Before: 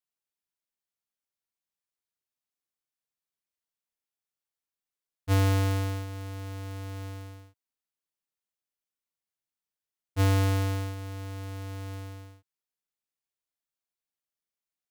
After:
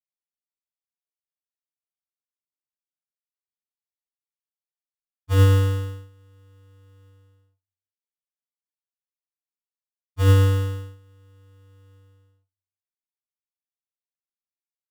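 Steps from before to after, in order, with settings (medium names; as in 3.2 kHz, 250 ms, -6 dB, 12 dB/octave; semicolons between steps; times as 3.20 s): band-stop 2.2 kHz, Q 12; reverberation RT60 0.25 s, pre-delay 6 ms, DRR -1 dB; upward expansion 2.5:1, over -28 dBFS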